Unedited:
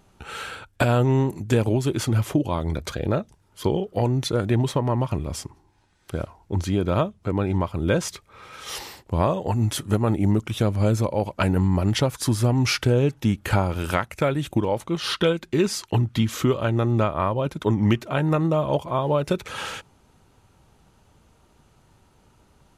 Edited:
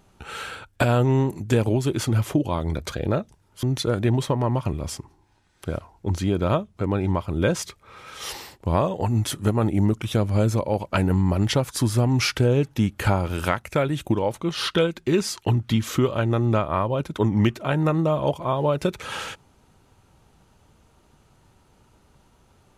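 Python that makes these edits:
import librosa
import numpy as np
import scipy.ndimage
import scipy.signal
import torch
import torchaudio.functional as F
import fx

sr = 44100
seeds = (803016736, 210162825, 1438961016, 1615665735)

y = fx.edit(x, sr, fx.cut(start_s=3.63, length_s=0.46), tone=tone)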